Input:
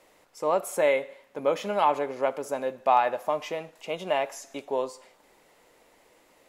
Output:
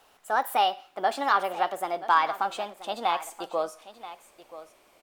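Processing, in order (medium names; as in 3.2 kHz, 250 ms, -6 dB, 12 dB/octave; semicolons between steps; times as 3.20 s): gliding tape speed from 143% -> 115%; delay 981 ms -15 dB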